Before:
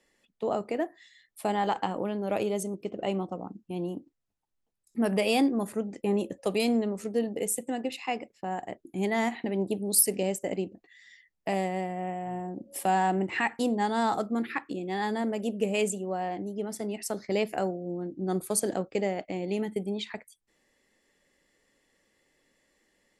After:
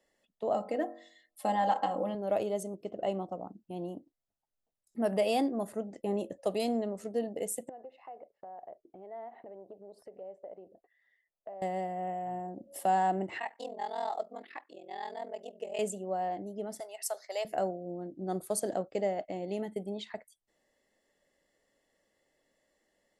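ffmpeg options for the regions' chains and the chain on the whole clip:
-filter_complex "[0:a]asettb=1/sr,asplit=3[a][b][c];[a]atrim=end=0.544[d];[b]atrim=start=0.54:end=2.15,asetpts=PTS-STARTPTS,afade=t=in:d=0.004:c=qsin,afade=t=out:st=1.606:d=0.004:c=qsin,aecho=1:1:3.8:0.83,atrim=end_sample=71001,bandreject=f=47.56:t=h:w=4,bandreject=f=95.12:t=h:w=4,bandreject=f=142.68:t=h:w=4,bandreject=f=190.24:t=h:w=4,bandreject=f=237.8:t=h:w=4,bandreject=f=285.36:t=h:w=4,bandreject=f=332.92:t=h:w=4,bandreject=f=380.48:t=h:w=4,bandreject=f=428.04:t=h:w=4,bandreject=f=475.6:t=h:w=4,bandreject=f=523.16:t=h:w=4,bandreject=f=570.72:t=h:w=4,bandreject=f=618.28:t=h:w=4,bandreject=f=665.84:t=h:w=4,bandreject=f=713.4:t=h:w=4,bandreject=f=760.96:t=h:w=4,bandreject=f=808.52:t=h:w=4,bandreject=f=856.08:t=h:w=4,bandreject=f=903.64:t=h:w=4,bandreject=f=951.2:t=h:w=4,bandreject=f=998.76:t=h:w=4,bandreject=f=1.04632k:t=h:w=4,bandreject=f=1.09388k:t=h:w=4,bandreject=f=1.14144k:t=h:w=4,bandreject=f=1.189k:t=h:w=4,bandreject=f=1.23656k:t=h:w=4,bandreject=f=1.28412k:t=h:w=4,bandreject=f=1.33168k:t=h:w=4,bandreject=f=1.37924k:t=h:w=4,bandreject=f=1.4268k:t=h:w=4,bandreject=f=1.47436k:t=h:w=4[e];[c]atrim=start=2.146[f];[d][e]acrossfade=d=0.004:c1=hsin:c2=qsin[g];[g][f]acrossfade=d=0.004:c1=qsin:c2=hsin,asettb=1/sr,asplit=3[h][i][j];[h]atrim=end=7.694[k];[i]atrim=start=7.69:end=11.62,asetpts=PTS-STARTPTS,afade=t=in:d=0.004:c=qsin,afade=t=out:st=3.926:d=0.004:c=qsin,lowpass=1.1k,lowshelf=f=350:t=q:w=1.5:g=-9,acompressor=threshold=-43dB:ratio=4:attack=3.2:release=140:knee=1:detection=peak[l];[j]atrim=start=11.616[m];[k][l]acrossfade=d=0.004:c1=hsin:c2=qsin[n];[n][m]acrossfade=d=0.004:c1=qsin:c2=hsin,asettb=1/sr,asplit=3[o][p][q];[o]atrim=end=13.384[r];[p]atrim=start=13.38:end=15.79,asetpts=PTS-STARTPTS,afade=t=in:d=0.004:c=qsin,afade=t=out:st=2.406:d=0.004:c=qsin,equalizer=f=1.4k:t=o:w=0.49:g=-8.5,aeval=exprs='val(0)*sin(2*PI*21*n/s)':c=same,highpass=550,lowpass=5.8k[s];[q]atrim=start=15.786[t];[r][s]acrossfade=d=0.004:c1=hsin:c2=qsin[u];[u][t]acrossfade=d=0.004:c1=qsin:c2=hsin,asettb=1/sr,asplit=3[v][w][x];[v]atrim=end=16.804[y];[w]atrim=start=16.8:end=17.45,asetpts=PTS-STARTPTS,afade=t=in:d=0.004:c=qsin,afade=t=out:st=0.646:d=0.004:c=qsin,highpass=f=600:w=0.5412,highpass=f=600:w=1.3066,aemphasis=mode=production:type=cd[z];[x]atrim=start=17.446[aa];[y][z]acrossfade=d=0.004:c1=hsin:c2=qsin[ab];[ab][aa]acrossfade=d=0.004:c1=qsin:c2=hsin,equalizer=f=640:w=2.4:g=9.5,bandreject=f=2.4k:w=8.6,volume=-7dB"

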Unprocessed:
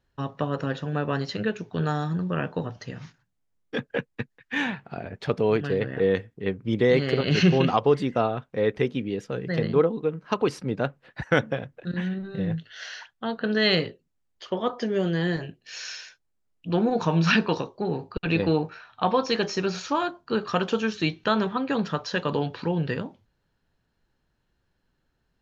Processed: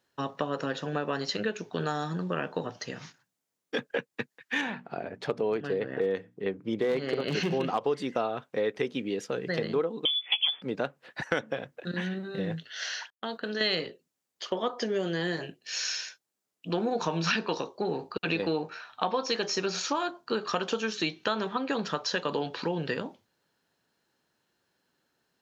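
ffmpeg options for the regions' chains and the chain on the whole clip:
-filter_complex "[0:a]asettb=1/sr,asplit=3[a][b][c];[a]atrim=end=4.614[d];[b]atrim=start=4.61:end=7.81,asetpts=PTS-STARTPTS,afade=t=in:d=0.004:c=qsin,afade=t=out:st=3.196:d=0.004:c=qsin,highshelf=f=2k:g=-8.5,bandreject=f=60:t=h:w=6,bandreject=f=120:t=h:w=6,bandreject=f=180:t=h:w=6,bandreject=f=240:t=h:w=6,bandreject=f=300:t=h:w=6,aeval=exprs='clip(val(0),-1,0.158)':c=same[e];[c]atrim=start=7.806[f];[d][e]acrossfade=d=0.004:c1=hsin:c2=qsin[g];[g][f]acrossfade=d=0.004:c1=qsin:c2=hsin,asettb=1/sr,asplit=3[h][i][j];[h]atrim=end=10.054[k];[i]atrim=start=10.05:end=10.62,asetpts=PTS-STARTPTS,afade=t=in:d=0.004:c=qsin,afade=t=out:st=0.566:d=0.004:c=qsin,equalizer=f=140:t=o:w=1.3:g=9.5,asplit=2[l][m];[m]adelay=14,volume=-6dB[n];[l][n]amix=inputs=2:normalize=0,atrim=end_sample=25137,lowpass=f=3.1k:t=q:w=0.5098,lowpass=f=3.1k:t=q:w=0.6013,lowpass=f=3.1k:t=q:w=0.9,lowpass=f=3.1k:t=q:w=2.563,afreqshift=-3600[o];[j]atrim=start=10.616[p];[k][o]acrossfade=d=0.004:c1=hsin:c2=qsin[q];[q][p]acrossfade=d=0.004:c1=qsin:c2=hsin,asettb=1/sr,asplit=3[r][s][t];[r]atrim=end=13.104[u];[s]atrim=start=13.1:end=13.61,asetpts=PTS-STARTPTS,afade=t=in:d=0.004:c=qsin,afade=t=out:st=0.506:d=0.004:c=qsin,agate=range=-33dB:threshold=-34dB:ratio=3:release=100:detection=peak,highshelf=f=4.6k:g=8.5,acompressor=threshold=-33dB:ratio=2.5:attack=3.2:release=140:knee=1:detection=peak[v];[t]atrim=start=13.606[w];[u][v]acrossfade=d=0.004:c1=hsin:c2=qsin[x];[x][w]acrossfade=d=0.004:c1=qsin:c2=hsin,highpass=160,bass=f=250:g=-6,treble=f=4k:g=6,acompressor=threshold=-29dB:ratio=3,volume=2dB"

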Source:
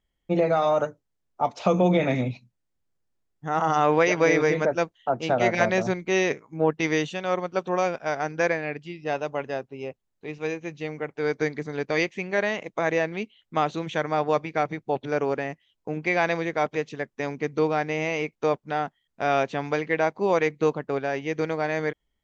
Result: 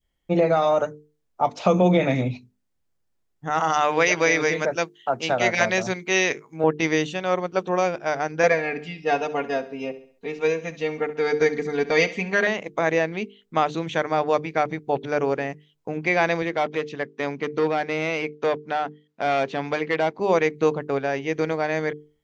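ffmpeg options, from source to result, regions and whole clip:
-filter_complex "[0:a]asettb=1/sr,asplit=3[a][b][c];[a]atrim=end=3.504[d];[b]atrim=start=3.5:end=6.64,asetpts=PTS-STARTPTS,afade=t=in:d=0.004:c=qsin,afade=t=out:st=3.136:d=0.004:c=qsin,highpass=49,tiltshelf=f=1.1k:g=-5[e];[c]atrim=start=6.636[f];[d][e]acrossfade=d=0.004:c1=hsin:c2=qsin[g];[g][f]acrossfade=d=0.004:c1=qsin:c2=hsin,asettb=1/sr,asplit=3[h][i][j];[h]atrim=end=8.434[k];[i]atrim=start=8.43:end=12.47,asetpts=PTS-STARTPTS,afade=t=in:d=0.004:c=qsin,afade=t=out:st=4.036:d=0.004:c=qsin,aecho=1:1:4.3:0.91,atrim=end_sample=178164,aecho=1:1:68|136|204|272:0.158|0.0713|0.0321|0.0144,atrim=end_sample=178164[l];[j]atrim=start=12.466[m];[k][l]acrossfade=d=0.004:c1=hsin:c2=qsin[n];[n][m]acrossfade=d=0.004:c1=qsin:c2=hsin,asettb=1/sr,asplit=3[o][p][q];[o]atrim=end=16.424[r];[p]atrim=start=16.42:end=20.2,asetpts=PTS-STARTPTS,afade=t=in:d=0.004:c=qsin,afade=t=out:st=3.776:d=0.004:c=qsin,aemphasis=mode=production:type=50kf,asoftclip=type=hard:threshold=-19dB,highpass=130,lowpass=3.6k[s];[q]atrim=start=20.196[t];[r][s]acrossfade=d=0.004:c1=hsin:c2=qsin[u];[u][t]acrossfade=d=0.004:c1=qsin:c2=hsin,adynamicequalizer=threshold=0.0251:dfrequency=1200:dqfactor=0.74:tfrequency=1200:tqfactor=0.74:attack=5:release=100:ratio=0.375:range=1.5:mode=cutabove:tftype=bell,bandreject=f=50:t=h:w=6,bandreject=f=100:t=h:w=6,bandreject=f=150:t=h:w=6,bandreject=f=200:t=h:w=6,bandreject=f=250:t=h:w=6,bandreject=f=300:t=h:w=6,bandreject=f=350:t=h:w=6,bandreject=f=400:t=h:w=6,bandreject=f=450:t=h:w=6,volume=3dB"

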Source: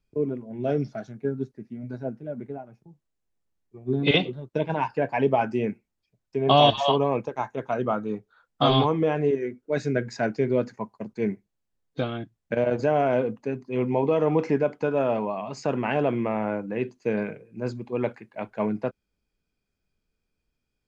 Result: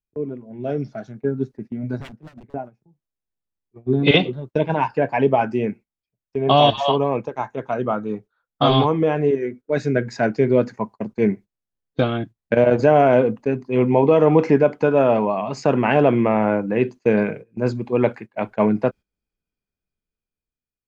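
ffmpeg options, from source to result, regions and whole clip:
-filter_complex "[0:a]asettb=1/sr,asplit=3[a][b][c];[a]atrim=end=2.004[d];[b]atrim=start=2:end=2.54,asetpts=PTS-STARTPTS,afade=t=in:d=0.004:c=qsin,afade=t=out:st=0.536:d=0.004:c=qsin,aeval=exprs='0.0211*(abs(mod(val(0)/0.0211+3,4)-2)-1)':c=same,acrossover=split=180|3000[e][f][g];[f]acompressor=threshold=-46dB:ratio=10:attack=3.2:release=140:knee=2.83:detection=peak[h];[e][h][g]amix=inputs=3:normalize=0[i];[c]atrim=start=2.536[j];[d][i]acrossfade=d=0.004:c1=hsin:c2=qsin[k];[k][j]acrossfade=d=0.004:c1=qsin:c2=hsin,agate=range=-15dB:threshold=-42dB:ratio=16:detection=peak,highshelf=f=4.7k:g=-5.5,dynaudnorm=f=390:g=7:m=11.5dB,volume=-1dB"

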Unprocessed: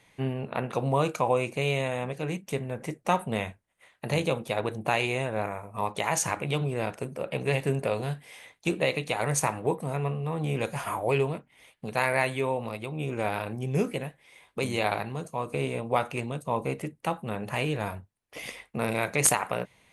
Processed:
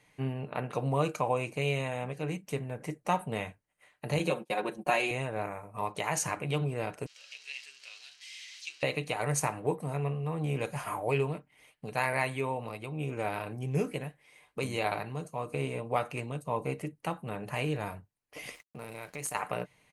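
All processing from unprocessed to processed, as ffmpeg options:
-filter_complex "[0:a]asettb=1/sr,asplit=3[a][b][c];[a]atrim=end=4.194[d];[b]atrim=start=4.19:end=5.11,asetpts=PTS-STARTPTS,afade=t=in:d=0.004:c=qsin,afade=t=out:st=0.916:d=0.004:c=qsin,highpass=f=180:w=0.5412,highpass=f=180:w=1.3066,agate=range=-27dB:threshold=-40dB:ratio=16:release=100:detection=peak,aecho=1:1:5.5:0.91,atrim=end_sample=40572[e];[c]atrim=start=5.106[f];[d][e]acrossfade=d=0.004:c1=hsin:c2=qsin[g];[g][f]acrossfade=d=0.004:c1=qsin:c2=hsin,asettb=1/sr,asplit=3[h][i][j];[h]atrim=end=7.064[k];[i]atrim=start=7.06:end=8.83,asetpts=PTS-STARTPTS,afade=t=in:d=0.004:c=qsin,afade=t=out:st=1.766:d=0.004:c=qsin,aeval=exprs='val(0)+0.5*0.0266*sgn(val(0))':c=same,asuperpass=centerf=4200:order=4:qfactor=1.2[l];[j]atrim=start=8.826[m];[k][l]acrossfade=d=0.004:c1=hsin:c2=qsin[n];[n][m]acrossfade=d=0.004:c1=qsin:c2=hsin,asettb=1/sr,asplit=3[o][p][q];[o]atrim=end=18.554[r];[p]atrim=start=18.55:end=19.35,asetpts=PTS-STARTPTS,afade=t=in:d=0.004:c=qsin,afade=t=out:st=0.796:d=0.004:c=qsin,highshelf=f=7.3k:g=7,aeval=exprs='sgn(val(0))*max(abs(val(0))-0.00596,0)':c=same,acompressor=threshold=-41dB:ratio=2:attack=3.2:release=140:knee=1:detection=peak[s];[q]atrim=start=19.346[t];[r][s]acrossfade=d=0.004:c1=hsin:c2=qsin[u];[u][t]acrossfade=d=0.004:c1=qsin:c2=hsin,bandreject=f=3.5k:w=11,aecho=1:1:6.7:0.33,volume=-4.5dB"

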